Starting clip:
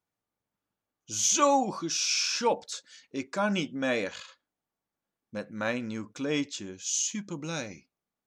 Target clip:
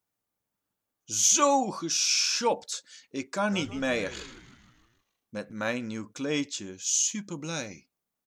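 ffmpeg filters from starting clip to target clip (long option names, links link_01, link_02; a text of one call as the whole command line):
ffmpeg -i in.wav -filter_complex "[0:a]highshelf=frequency=7500:gain=9,asplit=3[link_01][link_02][link_03];[link_01]afade=type=out:start_time=3.51:duration=0.02[link_04];[link_02]asplit=7[link_05][link_06][link_07][link_08][link_09][link_10][link_11];[link_06]adelay=156,afreqshift=-96,volume=-15.5dB[link_12];[link_07]adelay=312,afreqshift=-192,volume=-20.4dB[link_13];[link_08]adelay=468,afreqshift=-288,volume=-25.3dB[link_14];[link_09]adelay=624,afreqshift=-384,volume=-30.1dB[link_15];[link_10]adelay=780,afreqshift=-480,volume=-35dB[link_16];[link_11]adelay=936,afreqshift=-576,volume=-39.9dB[link_17];[link_05][link_12][link_13][link_14][link_15][link_16][link_17]amix=inputs=7:normalize=0,afade=type=in:start_time=3.51:duration=0.02,afade=type=out:start_time=5.51:duration=0.02[link_18];[link_03]afade=type=in:start_time=5.51:duration=0.02[link_19];[link_04][link_18][link_19]amix=inputs=3:normalize=0" out.wav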